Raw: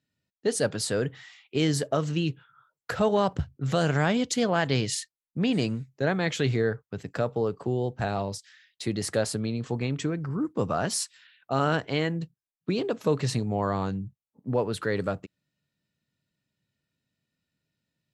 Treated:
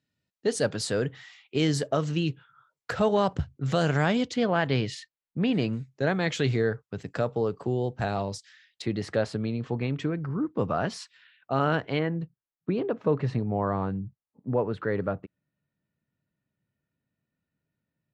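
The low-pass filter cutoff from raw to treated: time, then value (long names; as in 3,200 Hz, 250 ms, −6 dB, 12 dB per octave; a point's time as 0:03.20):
7,800 Hz
from 0:04.28 3,400 Hz
from 0:05.73 7,900 Hz
from 0:08.82 3,300 Hz
from 0:11.99 1,800 Hz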